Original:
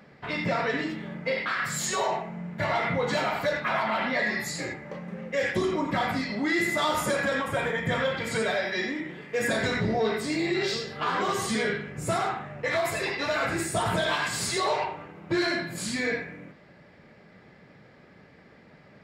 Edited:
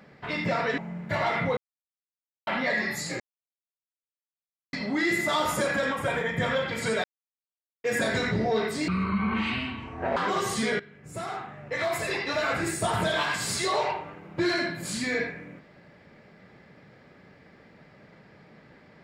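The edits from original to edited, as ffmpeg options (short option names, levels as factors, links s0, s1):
-filter_complex "[0:a]asplit=11[s0][s1][s2][s3][s4][s5][s6][s7][s8][s9][s10];[s0]atrim=end=0.782[s11];[s1]atrim=start=2.268:end=3.06,asetpts=PTS-STARTPTS,afade=t=out:st=0.788:d=0.004:c=hsin[s12];[s2]atrim=start=3.06:end=3.96,asetpts=PTS-STARTPTS,volume=0[s13];[s3]atrim=start=3.96:end=4.69,asetpts=PTS-STARTPTS,afade=t=in:d=0.004:c=hsin,afade=t=out:st=0.726:d=0.004:c=hsin[s14];[s4]atrim=start=4.69:end=6.22,asetpts=PTS-STARTPTS,volume=0[s15];[s5]atrim=start=6.22:end=8.53,asetpts=PTS-STARTPTS,afade=t=in:d=0.004:c=hsin,afade=t=out:st=2.306:d=0.004:c=hsin[s16];[s6]atrim=start=8.53:end=9.33,asetpts=PTS-STARTPTS,volume=0[s17];[s7]atrim=start=9.33:end=10.374,asetpts=PTS-STARTPTS,afade=t=in:d=0.004:c=hsin[s18];[s8]atrim=start=10.37:end=11.09,asetpts=PTS-STARTPTS,asetrate=24696,aresample=44100[s19];[s9]atrim=start=11.086:end=11.72,asetpts=PTS-STARTPTS,afade=t=out:st=0.63:d=0.004:c=hsin:silence=0.11885[s20];[s10]atrim=start=11.72,asetpts=PTS-STARTPTS,afade=t=in:d=1.32:silence=0.11885[s21];[s12][s13][s14][s15][s16][s17][s18]concat=n=7:v=0:a=1[s22];[s11][s22]acrossfade=d=0.004:c1=hsin:c2=hsin[s23];[s23][s19]acrossfade=d=0.004:c1=hsin:c2=hsin[s24];[s20][s21]concat=n=2:v=0:a=1[s25];[s24][s25]acrossfade=d=0.004:c1=hsin:c2=hsin"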